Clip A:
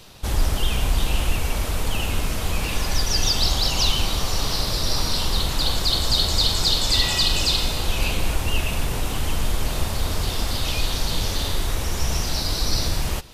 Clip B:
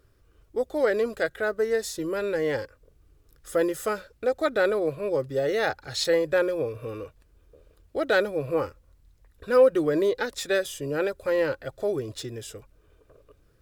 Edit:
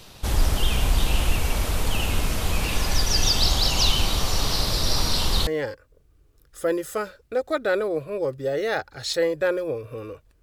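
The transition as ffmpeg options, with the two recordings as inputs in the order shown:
ffmpeg -i cue0.wav -i cue1.wav -filter_complex "[0:a]apad=whole_dur=10.42,atrim=end=10.42,atrim=end=5.472[link_01];[1:a]atrim=start=2.378:end=7.33[link_02];[link_01][link_02]acrossfade=duration=0.004:curve1=hsin:curve2=hsin" out.wav

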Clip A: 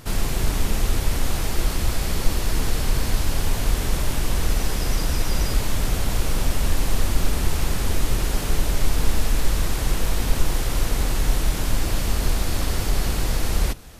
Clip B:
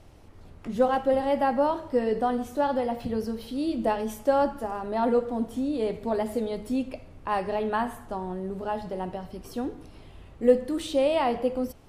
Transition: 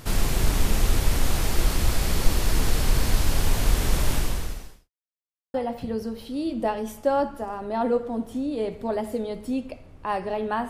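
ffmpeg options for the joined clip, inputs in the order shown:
ffmpeg -i cue0.wav -i cue1.wav -filter_complex "[0:a]apad=whole_dur=10.69,atrim=end=10.69,asplit=2[link_01][link_02];[link_01]atrim=end=4.9,asetpts=PTS-STARTPTS,afade=type=out:start_time=4.15:duration=0.75:curve=qua[link_03];[link_02]atrim=start=4.9:end=5.54,asetpts=PTS-STARTPTS,volume=0[link_04];[1:a]atrim=start=2.76:end=7.91,asetpts=PTS-STARTPTS,afade=type=in:duration=0.004:curve=hsin[link_05];[link_03][link_04][link_05]concat=n=3:v=0:a=1" out.wav

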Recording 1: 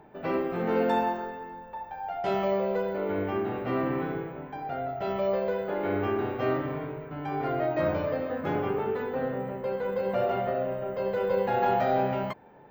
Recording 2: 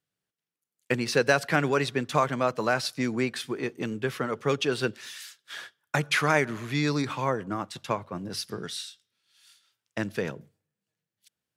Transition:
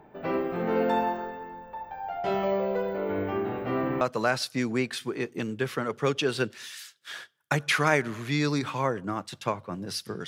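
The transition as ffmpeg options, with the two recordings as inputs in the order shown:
ffmpeg -i cue0.wav -i cue1.wav -filter_complex "[0:a]apad=whole_dur=10.27,atrim=end=10.27,atrim=end=4.012[link_01];[1:a]atrim=start=2.438:end=8.7[link_02];[link_01][link_02]acrossfade=duration=0.004:curve1=hsin:curve2=hsin" out.wav

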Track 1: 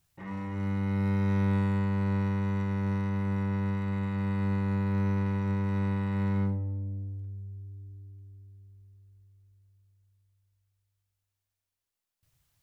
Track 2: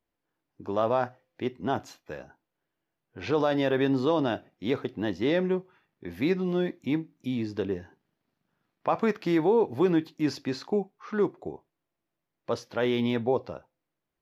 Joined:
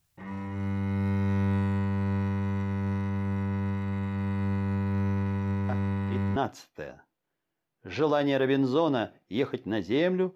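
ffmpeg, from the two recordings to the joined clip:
ffmpeg -i cue0.wav -i cue1.wav -filter_complex "[1:a]asplit=2[link_01][link_02];[0:a]apad=whole_dur=10.35,atrim=end=10.35,atrim=end=6.362[link_03];[link_02]atrim=start=1.668:end=5.66[link_04];[link_01]atrim=start=1:end=1.67,asetpts=PTS-STARTPTS,volume=-7dB,afade=type=in:duration=0.004:curve=hsin,afade=type=out:start_time=0.666:duration=0.004:curve=hsin,adelay=250929S[link_05];[link_03][link_04]acrossfade=duration=0.004:curve1=hsin:curve2=hsin[link_06];[link_06][link_05]amix=inputs=2:normalize=0" out.wav

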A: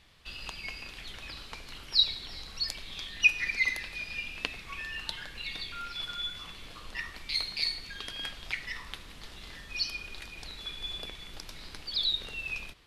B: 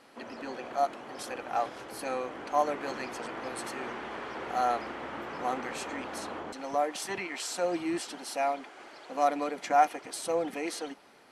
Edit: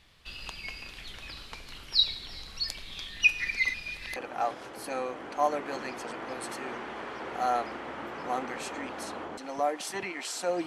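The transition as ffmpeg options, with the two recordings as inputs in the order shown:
ffmpeg -i cue0.wav -i cue1.wav -filter_complex "[0:a]apad=whole_dur=10.66,atrim=end=10.66,asplit=2[link_01][link_02];[link_01]atrim=end=3.742[link_03];[link_02]atrim=start=3.738:end=4.162,asetpts=PTS-STARTPTS,areverse[link_04];[1:a]atrim=start=1.308:end=7.81[link_05];[link_03][link_04]acrossfade=duration=0.004:curve1=hsin:curve2=hsin[link_06];[link_06][link_05]acrossfade=duration=0.004:curve1=hsin:curve2=hsin" out.wav

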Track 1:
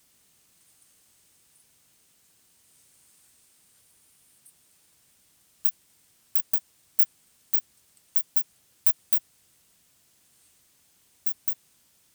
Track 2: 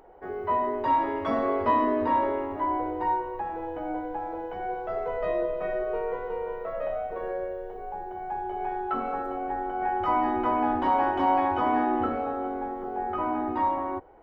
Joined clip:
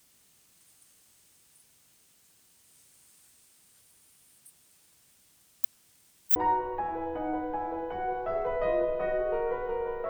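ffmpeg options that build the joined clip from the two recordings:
ffmpeg -i cue0.wav -i cue1.wav -filter_complex "[0:a]apad=whole_dur=10.09,atrim=end=10.09,asplit=2[link_01][link_02];[link_01]atrim=end=5.642[link_03];[link_02]atrim=start=5.638:end=6.362,asetpts=PTS-STARTPTS,areverse[link_04];[1:a]atrim=start=2.968:end=6.7[link_05];[link_03][link_04]acrossfade=duration=0.004:curve1=hsin:curve2=hsin[link_06];[link_06][link_05]acrossfade=duration=0.004:curve1=hsin:curve2=hsin" out.wav

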